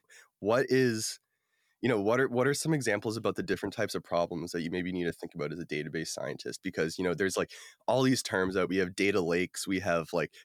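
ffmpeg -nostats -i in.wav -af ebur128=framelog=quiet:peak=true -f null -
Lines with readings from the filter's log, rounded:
Integrated loudness:
  I:         -30.9 LUFS
  Threshold: -40.9 LUFS
Loudness range:
  LRA:         4.4 LU
  Threshold: -51.5 LUFS
  LRA low:   -34.3 LUFS
  LRA high:  -29.8 LUFS
True peak:
  Peak:      -14.2 dBFS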